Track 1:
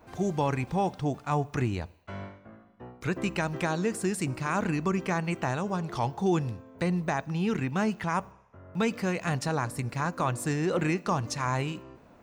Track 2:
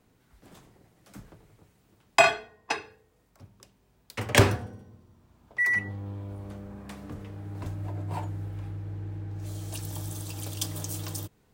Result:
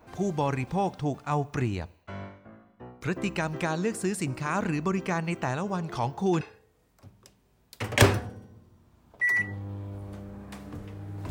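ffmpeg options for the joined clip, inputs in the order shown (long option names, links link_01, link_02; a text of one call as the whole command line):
ffmpeg -i cue0.wav -i cue1.wav -filter_complex "[1:a]asplit=2[link_01][link_02];[0:a]apad=whole_dur=11.3,atrim=end=11.3,atrim=end=6.412[link_03];[link_02]atrim=start=2.778:end=7.67[link_04];[link_01]atrim=start=2.29:end=2.78,asetpts=PTS-STARTPTS,volume=-17.5dB,afade=type=in:duration=0.004:curve=hsin,afade=type=out:start_time=0.486:duration=0.004:curve=hsin,adelay=5920[link_05];[link_03][link_04]acrossfade=duration=0.004:curve1=hsin:curve2=hsin[link_06];[link_06][link_05]amix=inputs=2:normalize=0" out.wav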